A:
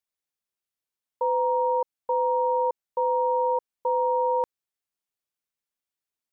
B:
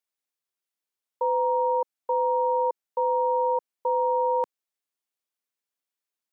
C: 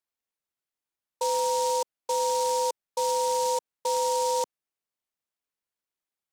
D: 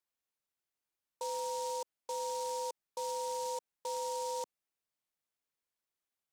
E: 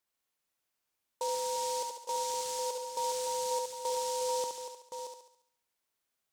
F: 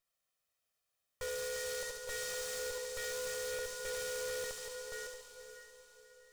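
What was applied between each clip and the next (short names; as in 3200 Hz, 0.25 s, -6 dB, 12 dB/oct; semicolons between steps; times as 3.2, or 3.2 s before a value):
HPF 220 Hz
noise-modulated delay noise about 5900 Hz, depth 0.065 ms; gain -2 dB
limiter -29.5 dBFS, peak gain reduction 10 dB; gain -1.5 dB
reverse delay 0.39 s, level -8 dB; thinning echo 70 ms, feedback 50%, high-pass 290 Hz, level -4.5 dB; gain +4.5 dB
minimum comb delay 1.6 ms; diffused feedback echo 0.509 s, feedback 43%, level -11 dB; hard clip -37 dBFS, distortion -10 dB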